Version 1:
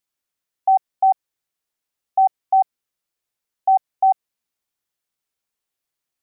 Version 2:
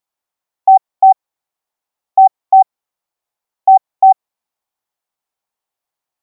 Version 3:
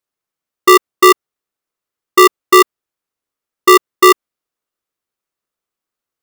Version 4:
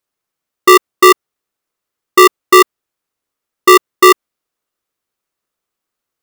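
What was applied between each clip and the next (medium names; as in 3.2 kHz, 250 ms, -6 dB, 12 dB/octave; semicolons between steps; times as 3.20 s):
peaking EQ 830 Hz +12 dB 1.2 oct; trim -3 dB
polarity switched at an audio rate 400 Hz
saturation -5 dBFS, distortion -18 dB; trim +4.5 dB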